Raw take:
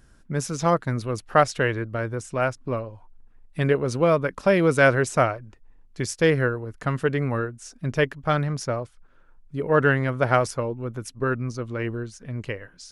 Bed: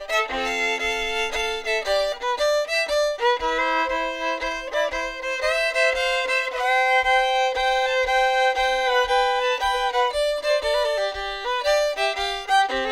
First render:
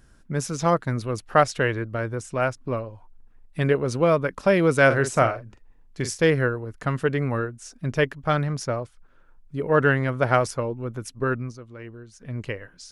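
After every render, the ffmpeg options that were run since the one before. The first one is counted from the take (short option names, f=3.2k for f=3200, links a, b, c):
-filter_complex "[0:a]asettb=1/sr,asplit=3[a][b][c];[a]atrim=end=4.864[d];[b]atrim=start=4.86:end=6.24,asetpts=PTS-STARTPTS,afade=t=in:d=0.004:c=qsin,afade=t=out:st=1.376:d=0.004:c=qsin,asplit=2[e][f];[f]adelay=43,volume=-9dB[g];[e][g]amix=inputs=2:normalize=0,atrim=end_sample=60858[h];[c]atrim=start=6.236[i];[d][h]acrossfade=d=0.004:c1=hsin:c2=qsin[j];[j][i]acrossfade=d=0.004:c1=qsin:c2=hsin,asplit=3[k][l][m];[k]atrim=end=11.6,asetpts=PTS-STARTPTS,afade=t=out:st=11.35:d=0.25:silence=0.266073[n];[l]atrim=start=11.6:end=12.06,asetpts=PTS-STARTPTS,volume=-11.5dB[o];[m]atrim=start=12.06,asetpts=PTS-STARTPTS,afade=t=in:d=0.25:silence=0.266073[p];[n][o][p]concat=n=3:v=0:a=1"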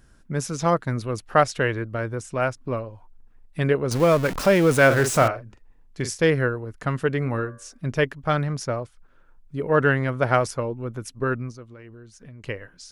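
-filter_complex "[0:a]asettb=1/sr,asplit=3[a][b][c];[a]atrim=end=3.914[d];[b]atrim=start=3.91:end=5.28,asetpts=PTS-STARTPTS,afade=t=in:d=0.004:c=qsin,afade=t=out:st=1.366:d=0.004:c=qsin,aeval=exprs='val(0)+0.5*0.0562*sgn(val(0))':c=same[e];[c]atrim=start=5.276[f];[d][e]acrossfade=d=0.004:c1=hsin:c2=qsin[g];[g][f]acrossfade=d=0.004:c1=qsin:c2=hsin,asettb=1/sr,asplit=3[h][i][j];[h]atrim=end=7.194[k];[i]atrim=start=7.19:end=7.87,asetpts=PTS-STARTPTS,afade=t=in:d=0.004:c=qsin,afade=t=out:st=0.676:d=0.004:c=qsin,bandreject=f=96.39:t=h:w=4,bandreject=f=192.78:t=h:w=4,bandreject=f=289.17:t=h:w=4,bandreject=f=385.56:t=h:w=4,bandreject=f=481.95:t=h:w=4,bandreject=f=578.34:t=h:w=4,bandreject=f=674.73:t=h:w=4,bandreject=f=771.12:t=h:w=4,bandreject=f=867.51:t=h:w=4,bandreject=f=963.9:t=h:w=4,bandreject=f=1.06029k:t=h:w=4,bandreject=f=1.15668k:t=h:w=4,bandreject=f=1.25307k:t=h:w=4,bandreject=f=1.34946k:t=h:w=4,bandreject=f=1.44585k:t=h:w=4,bandreject=f=1.54224k:t=h:w=4,bandreject=f=1.63863k:t=h:w=4,bandreject=f=1.73502k:t=h:w=4,bandreject=f=1.83141k:t=h:w=4,bandreject=f=1.9278k:t=h:w=4,bandreject=f=2.02419k:t=h:w=4,bandreject=f=2.12058k:t=h:w=4[l];[j]atrim=start=7.866[m];[k][l]acrossfade=d=0.004:c1=hsin:c2=qsin[n];[n][m]acrossfade=d=0.004:c1=qsin:c2=hsin,asettb=1/sr,asplit=3[o][p][q];[o]atrim=end=11.734[r];[p]atrim=start=11.73:end=12.44,asetpts=PTS-STARTPTS,afade=t=in:d=0.004:c=qsin,afade=t=out:st=0.706:d=0.004:c=qsin,acompressor=threshold=-40dB:ratio=6:attack=3.2:release=140:knee=1:detection=peak[s];[q]atrim=start=12.436[t];[r][s]acrossfade=d=0.004:c1=hsin:c2=qsin[u];[u][t]acrossfade=d=0.004:c1=qsin:c2=hsin"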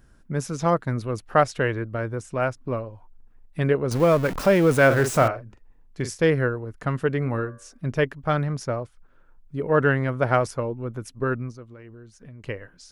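-af "equalizer=f=6.4k:w=0.31:g=-4.5"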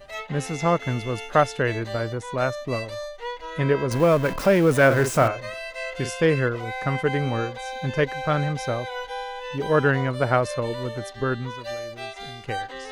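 -filter_complex "[1:a]volume=-12.5dB[a];[0:a][a]amix=inputs=2:normalize=0"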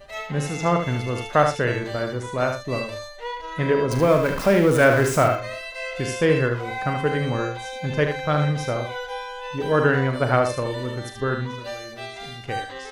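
-filter_complex "[0:a]asplit=2[a][b];[b]adelay=40,volume=-10.5dB[c];[a][c]amix=inputs=2:normalize=0,asplit=2[d][e];[e]aecho=0:1:75:0.473[f];[d][f]amix=inputs=2:normalize=0"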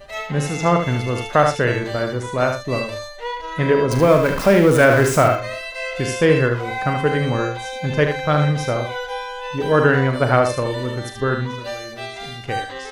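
-af "volume=4dB,alimiter=limit=-3dB:level=0:latency=1"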